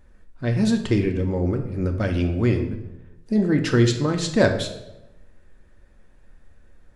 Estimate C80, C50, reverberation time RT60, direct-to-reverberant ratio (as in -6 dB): 11.5 dB, 9.0 dB, 0.95 s, 4.0 dB